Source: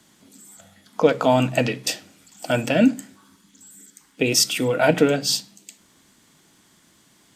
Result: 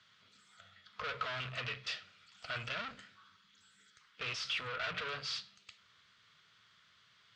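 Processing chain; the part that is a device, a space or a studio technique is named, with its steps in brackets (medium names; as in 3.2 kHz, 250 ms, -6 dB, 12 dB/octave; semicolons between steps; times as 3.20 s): scooped metal amplifier (valve stage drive 29 dB, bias 0.5; cabinet simulation 89–4100 Hz, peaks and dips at 110 Hz +6 dB, 430 Hz +6 dB, 830 Hz -8 dB, 1.3 kHz +9 dB; amplifier tone stack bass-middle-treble 10-0-10); trim +1 dB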